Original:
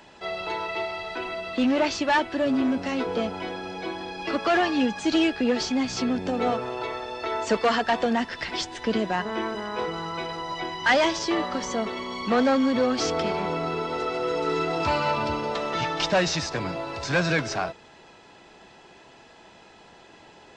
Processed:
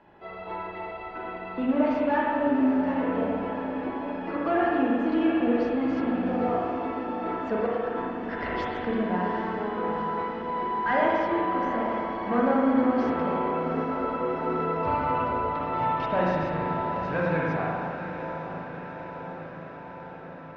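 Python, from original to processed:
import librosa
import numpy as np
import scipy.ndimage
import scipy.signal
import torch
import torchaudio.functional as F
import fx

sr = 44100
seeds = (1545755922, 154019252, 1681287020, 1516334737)

y = scipy.signal.sosfilt(scipy.signal.butter(2, 1500.0, 'lowpass', fs=sr, output='sos'), x)
y = fx.over_compress(y, sr, threshold_db=-34.0, ratio=-1.0, at=(7.66, 8.85))
y = fx.echo_diffused(y, sr, ms=807, feedback_pct=68, wet_db=-9.5)
y = fx.rev_spring(y, sr, rt60_s=2.0, pass_ms=(38, 55), chirp_ms=75, drr_db=-4.0)
y = F.gain(torch.from_numpy(y), -6.0).numpy()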